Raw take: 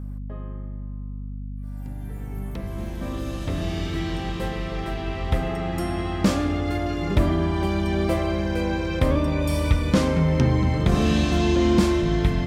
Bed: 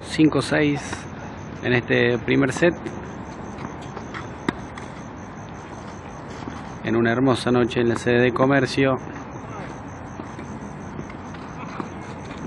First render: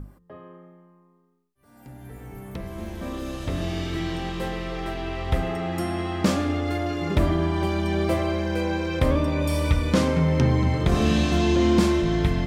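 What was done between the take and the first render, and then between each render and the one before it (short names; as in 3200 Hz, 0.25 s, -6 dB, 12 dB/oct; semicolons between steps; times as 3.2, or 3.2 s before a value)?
notches 50/100/150/200/250/300 Hz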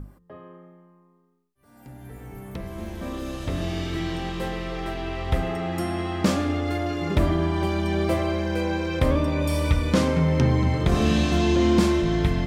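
nothing audible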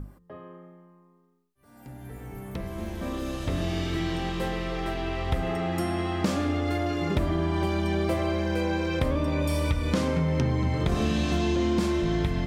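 compressor 4:1, threshold -22 dBFS, peak gain reduction 7.5 dB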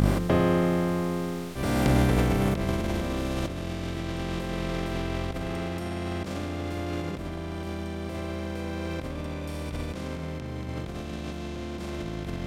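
per-bin compression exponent 0.4; negative-ratio compressor -27 dBFS, ratio -0.5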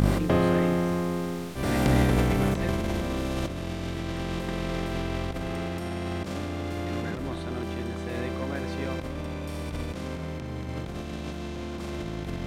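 add bed -18 dB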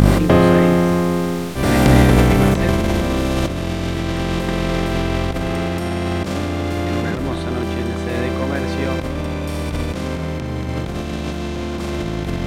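gain +10.5 dB; limiter -1 dBFS, peak gain reduction 1 dB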